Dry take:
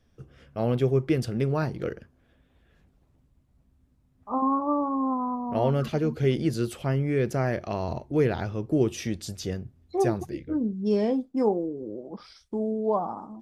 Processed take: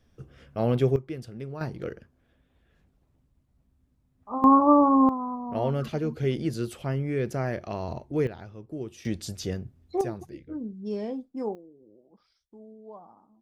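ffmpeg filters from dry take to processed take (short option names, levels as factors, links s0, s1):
-af "asetnsamples=n=441:p=0,asendcmd='0.96 volume volume -11.5dB;1.61 volume volume -3.5dB;4.44 volume volume 8dB;5.09 volume volume -3dB;8.27 volume volume -12.5dB;9.05 volume volume 0dB;10.01 volume volume -8dB;11.55 volume volume -20dB',volume=1.12"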